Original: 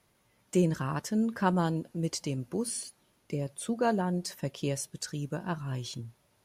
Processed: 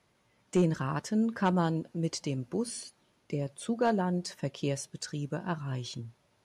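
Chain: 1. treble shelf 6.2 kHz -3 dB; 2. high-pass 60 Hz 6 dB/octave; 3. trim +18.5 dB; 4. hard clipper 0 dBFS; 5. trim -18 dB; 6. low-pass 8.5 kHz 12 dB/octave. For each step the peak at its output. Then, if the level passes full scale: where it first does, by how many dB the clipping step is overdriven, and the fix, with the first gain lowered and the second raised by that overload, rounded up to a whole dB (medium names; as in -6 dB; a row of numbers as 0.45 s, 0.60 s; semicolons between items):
-13.5 dBFS, -13.0 dBFS, +5.5 dBFS, 0.0 dBFS, -18.0 dBFS, -18.0 dBFS; step 3, 5.5 dB; step 3 +12.5 dB, step 5 -12 dB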